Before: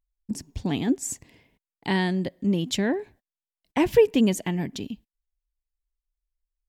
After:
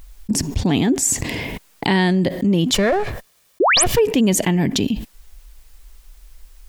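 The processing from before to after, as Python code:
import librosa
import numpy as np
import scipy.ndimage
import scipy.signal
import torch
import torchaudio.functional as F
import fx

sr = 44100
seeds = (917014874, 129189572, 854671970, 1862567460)

y = fx.lower_of_two(x, sr, delay_ms=1.7, at=(2.73, 3.98), fade=0.02)
y = fx.spec_paint(y, sr, seeds[0], shape='rise', start_s=3.6, length_s=0.24, low_hz=300.0, high_hz=12000.0, level_db=-18.0)
y = fx.env_flatten(y, sr, amount_pct=70)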